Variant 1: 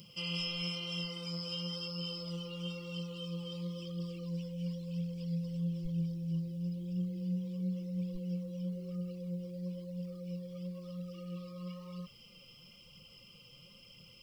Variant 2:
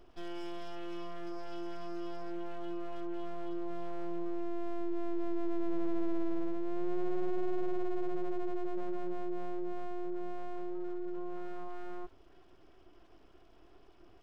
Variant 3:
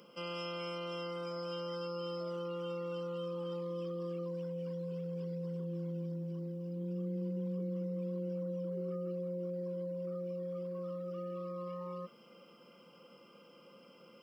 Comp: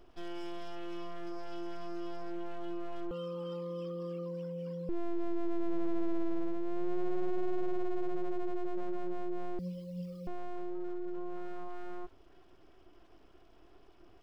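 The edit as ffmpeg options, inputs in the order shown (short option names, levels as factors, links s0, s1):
-filter_complex "[1:a]asplit=3[s0][s1][s2];[s0]atrim=end=3.112[s3];[2:a]atrim=start=3.108:end=4.892[s4];[s1]atrim=start=4.888:end=9.592[s5];[0:a]atrim=start=9.588:end=10.272[s6];[s2]atrim=start=10.268[s7];[s3][s4]acrossfade=d=0.004:c1=hsin:c2=hsin[s8];[s8][s5]acrossfade=d=0.004:c1=hsin:c2=hsin[s9];[s9][s6]acrossfade=d=0.004:c1=hsin:c2=hsin[s10];[s10][s7]acrossfade=d=0.004:c1=hsin:c2=hsin"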